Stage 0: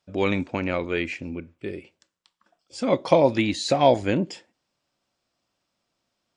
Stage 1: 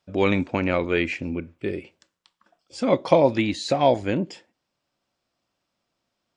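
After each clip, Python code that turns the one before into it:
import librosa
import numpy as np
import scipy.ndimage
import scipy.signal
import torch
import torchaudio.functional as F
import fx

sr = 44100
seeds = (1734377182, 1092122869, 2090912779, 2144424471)

y = fx.high_shelf(x, sr, hz=5400.0, db=-5.0)
y = fx.rider(y, sr, range_db=5, speed_s=2.0)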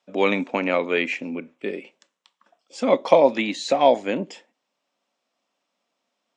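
y = fx.cabinet(x, sr, low_hz=230.0, low_slope=24, high_hz=8300.0, hz=(340.0, 1500.0, 4700.0), db=(-8, -4, -6))
y = y * 10.0 ** (3.0 / 20.0)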